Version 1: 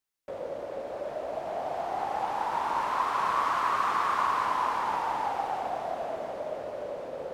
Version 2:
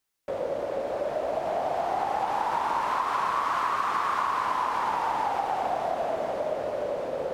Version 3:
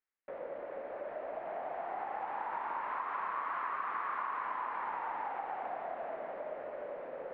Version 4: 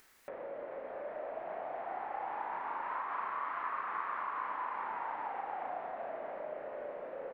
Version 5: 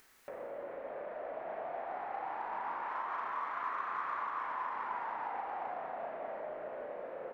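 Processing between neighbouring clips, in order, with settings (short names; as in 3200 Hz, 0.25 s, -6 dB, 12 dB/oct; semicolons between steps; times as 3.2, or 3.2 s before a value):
compressor, threshold -30 dBFS, peak gain reduction 7.5 dB; gain +6.5 dB
ladder low-pass 2400 Hz, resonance 40%; bell 88 Hz -14 dB 1.4 oct; gain -4 dB
doubler 36 ms -3 dB; upward compressor, threshold -38 dBFS; gain -2.5 dB
in parallel at -11 dB: soft clip -38.5 dBFS, distortion -11 dB; on the sum: reverb RT60 2.9 s, pre-delay 13 ms, DRR 5.5 dB; gain -2.5 dB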